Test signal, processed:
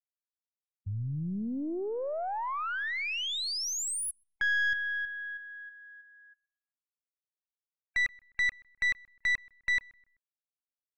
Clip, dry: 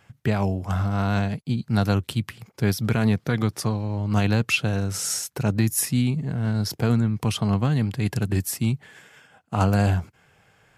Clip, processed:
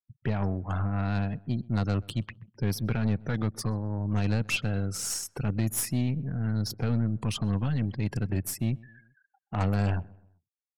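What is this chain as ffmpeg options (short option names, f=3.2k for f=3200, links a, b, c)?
-filter_complex "[0:a]afftfilt=real='re*gte(hypot(re,im),0.0158)':imag='im*gte(hypot(re,im),0.0158)':win_size=1024:overlap=0.75,aeval=exprs='(tanh(7.94*val(0)+0.45)-tanh(0.45))/7.94':c=same,asplit=2[a][b];[b]adelay=128,lowpass=f=1.7k:p=1,volume=-23dB,asplit=2[c][d];[d]adelay=128,lowpass=f=1.7k:p=1,volume=0.46,asplit=2[e][f];[f]adelay=128,lowpass=f=1.7k:p=1,volume=0.46[g];[a][c][e][g]amix=inputs=4:normalize=0,volume=-3dB"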